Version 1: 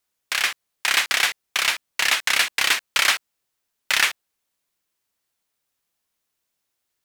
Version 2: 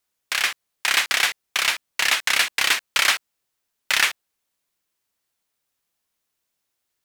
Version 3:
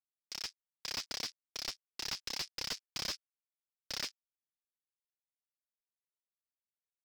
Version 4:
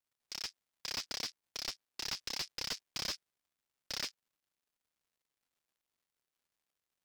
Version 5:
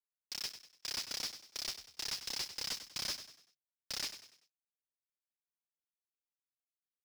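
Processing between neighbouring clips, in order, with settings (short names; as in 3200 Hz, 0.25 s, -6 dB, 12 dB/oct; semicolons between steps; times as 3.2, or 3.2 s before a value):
nothing audible
added harmonics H 3 -39 dB, 7 -17 dB, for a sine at -4 dBFS; band-pass 5100 Hz, Q 5.8; slew limiter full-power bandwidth 82 Hz; gain +1 dB
crackle 280/s -72 dBFS
companded quantiser 4-bit; hard clip -37 dBFS, distortion -8 dB; frequency-shifting echo 97 ms, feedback 39%, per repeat +35 Hz, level -11.5 dB; gain +3 dB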